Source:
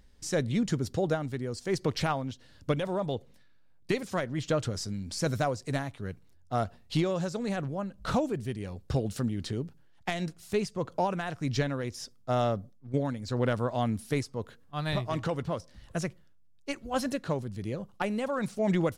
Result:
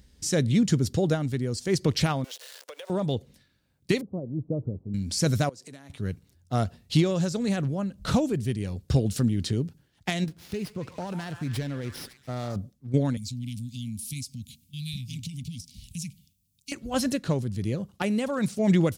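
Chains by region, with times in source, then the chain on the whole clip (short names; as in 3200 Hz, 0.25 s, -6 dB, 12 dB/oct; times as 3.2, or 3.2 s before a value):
2.24–2.9 zero-crossing step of -42.5 dBFS + elliptic high-pass 470 Hz, stop band 80 dB + compressor 10:1, threshold -40 dBFS
4.01–4.94 switching spikes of -31.5 dBFS + Gaussian blur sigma 15 samples + low shelf 160 Hz -8.5 dB
5.49–5.9 HPF 230 Hz + compressor 4:1, threshold -49 dBFS
10.24–12.56 compressor 2.5:1, threshold -36 dBFS + delay with a stepping band-pass 0.139 s, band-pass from 1200 Hz, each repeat 0.7 oct, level -5 dB + running maximum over 5 samples
13.17–16.72 Chebyshev band-stop 260–2300 Hz, order 5 + high shelf 5200 Hz +12 dB + compressor 2.5:1, threshold -43 dBFS
whole clip: HPF 54 Hz; bell 940 Hz -9.5 dB 2.6 oct; gain +8.5 dB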